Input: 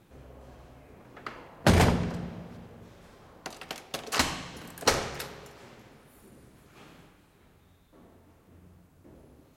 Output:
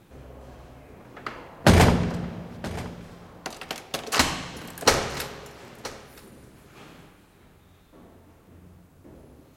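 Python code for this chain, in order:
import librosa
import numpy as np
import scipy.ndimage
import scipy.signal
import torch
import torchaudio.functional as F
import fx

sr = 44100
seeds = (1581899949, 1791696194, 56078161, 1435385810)

y = x + 10.0 ** (-18.0 / 20.0) * np.pad(x, (int(975 * sr / 1000.0), 0))[:len(x)]
y = y * 10.0 ** (5.0 / 20.0)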